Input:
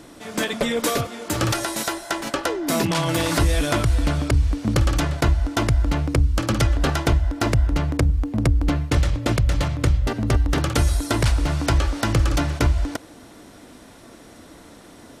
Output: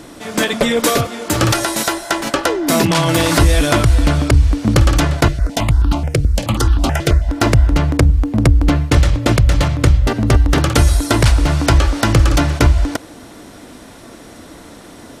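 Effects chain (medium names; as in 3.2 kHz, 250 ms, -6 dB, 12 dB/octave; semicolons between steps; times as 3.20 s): 5.28–7.29 s: stepped phaser 9.3 Hz 250–2100 Hz; trim +7.5 dB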